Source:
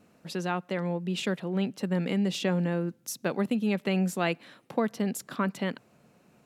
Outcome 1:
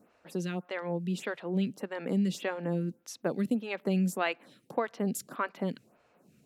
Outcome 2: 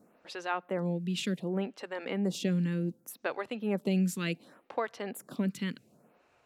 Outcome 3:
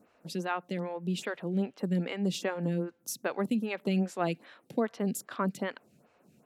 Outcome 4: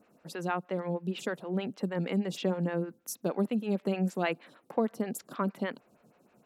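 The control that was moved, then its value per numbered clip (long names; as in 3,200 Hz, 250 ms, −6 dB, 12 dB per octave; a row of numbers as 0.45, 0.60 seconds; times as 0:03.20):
phaser with staggered stages, speed: 1.7, 0.67, 2.5, 6.4 Hertz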